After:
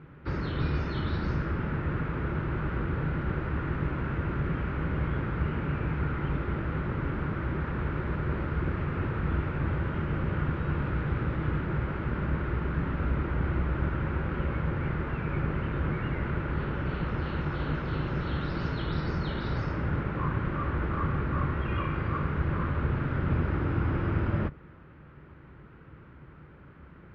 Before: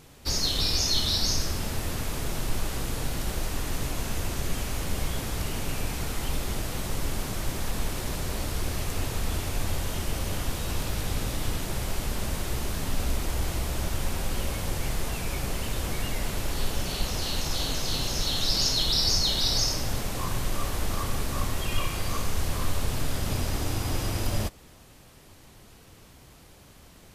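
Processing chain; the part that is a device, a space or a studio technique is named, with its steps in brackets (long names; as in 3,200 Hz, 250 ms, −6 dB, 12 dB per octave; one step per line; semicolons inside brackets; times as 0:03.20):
sub-octave bass pedal (sub-octave generator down 2 octaves, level 0 dB; loudspeaker in its box 62–2,100 Hz, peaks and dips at 69 Hz +6 dB, 150 Hz +9 dB, 340 Hz +5 dB, 710 Hz −8 dB, 1,400 Hz +8 dB)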